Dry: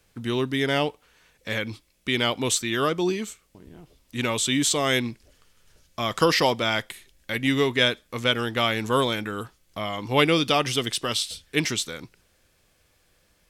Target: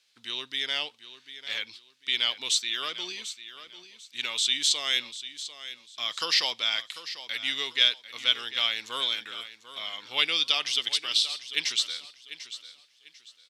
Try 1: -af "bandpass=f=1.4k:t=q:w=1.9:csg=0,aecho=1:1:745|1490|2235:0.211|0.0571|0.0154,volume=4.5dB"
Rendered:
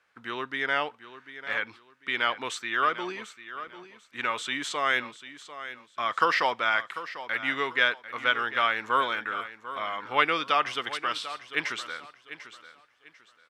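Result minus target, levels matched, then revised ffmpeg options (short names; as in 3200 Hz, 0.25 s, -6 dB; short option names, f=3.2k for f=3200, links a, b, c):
1000 Hz band +14.5 dB
-af "bandpass=f=4k:t=q:w=1.9:csg=0,aecho=1:1:745|1490|2235:0.211|0.0571|0.0154,volume=4.5dB"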